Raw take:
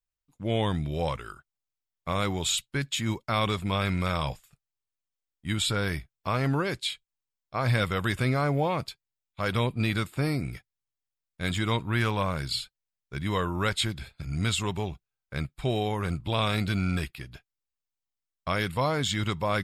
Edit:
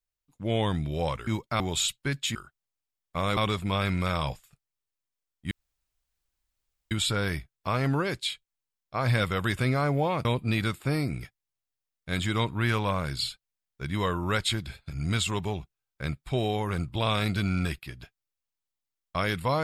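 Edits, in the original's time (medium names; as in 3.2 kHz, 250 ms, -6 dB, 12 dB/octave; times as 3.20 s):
1.27–2.29 s: swap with 3.04–3.37 s
5.51 s: insert room tone 1.40 s
8.85–9.57 s: delete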